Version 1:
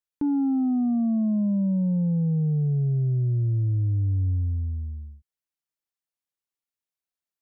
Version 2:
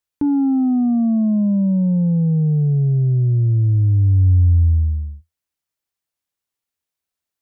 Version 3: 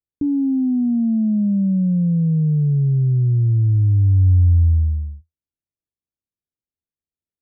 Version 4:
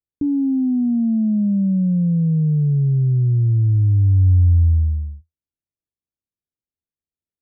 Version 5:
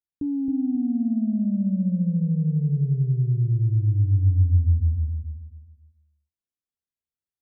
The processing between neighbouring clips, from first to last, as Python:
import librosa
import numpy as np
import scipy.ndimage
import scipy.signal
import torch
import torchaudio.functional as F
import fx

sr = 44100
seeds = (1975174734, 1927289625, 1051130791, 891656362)

y1 = fx.peak_eq(x, sr, hz=82.0, db=8.0, octaves=0.42)
y1 = F.gain(torch.from_numpy(y1), 6.5).numpy()
y2 = scipy.ndimage.gaussian_filter1d(y1, 18.0, mode='constant')
y3 = y2
y4 = fx.echo_feedback(y3, sr, ms=270, feedback_pct=30, wet_db=-4.0)
y4 = F.gain(torch.from_numpy(y4), -7.0).numpy()